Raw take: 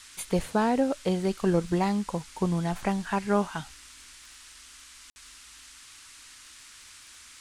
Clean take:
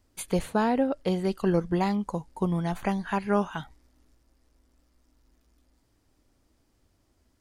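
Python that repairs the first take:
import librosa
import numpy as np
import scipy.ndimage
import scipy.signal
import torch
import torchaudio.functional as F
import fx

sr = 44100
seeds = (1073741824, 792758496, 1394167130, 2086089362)

y = fx.fix_declick_ar(x, sr, threshold=6.5)
y = fx.fix_ambience(y, sr, seeds[0], print_start_s=5.72, print_end_s=6.22, start_s=5.1, end_s=5.16)
y = fx.noise_reduce(y, sr, print_start_s=5.72, print_end_s=6.22, reduce_db=18.0)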